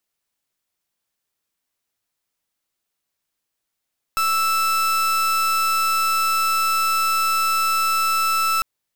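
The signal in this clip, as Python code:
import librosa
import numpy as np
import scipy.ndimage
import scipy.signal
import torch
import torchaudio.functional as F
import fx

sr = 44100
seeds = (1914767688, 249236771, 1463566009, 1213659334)

y = fx.pulse(sr, length_s=4.45, hz=1320.0, level_db=-19.5, duty_pct=38)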